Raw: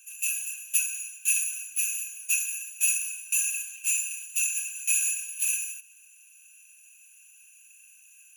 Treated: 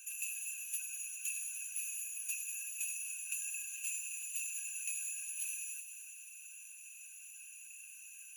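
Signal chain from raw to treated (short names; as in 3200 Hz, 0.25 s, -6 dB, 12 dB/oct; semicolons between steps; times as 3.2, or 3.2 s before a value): bin magnitudes rounded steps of 15 dB; compressor 6:1, threshold -41 dBFS, peak gain reduction 19.5 dB; on a send: thin delay 98 ms, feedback 80%, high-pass 2800 Hz, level -10 dB; on the sum: gain +1.5 dB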